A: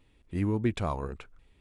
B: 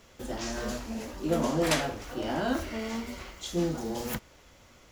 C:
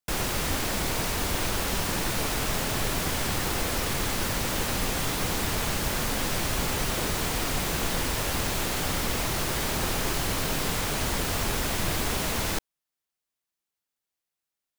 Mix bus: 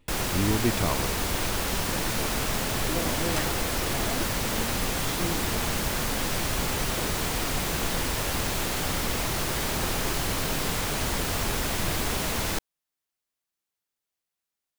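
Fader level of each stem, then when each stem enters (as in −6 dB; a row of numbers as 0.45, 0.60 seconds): +2.0, −5.5, 0.0 decibels; 0.00, 1.65, 0.00 seconds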